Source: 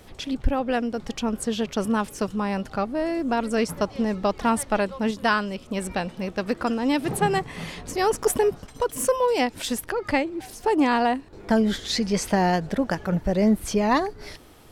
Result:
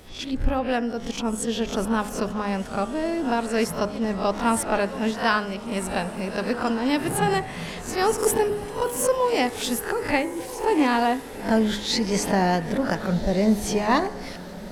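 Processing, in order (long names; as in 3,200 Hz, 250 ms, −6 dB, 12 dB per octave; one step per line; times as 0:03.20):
peak hold with a rise ahead of every peak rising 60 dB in 0.31 s
hum removal 69.18 Hz, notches 32
on a send: feedback delay with all-pass diffusion 1,470 ms, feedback 40%, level −14.5 dB
on the sum: level that may rise only so fast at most 180 dB per second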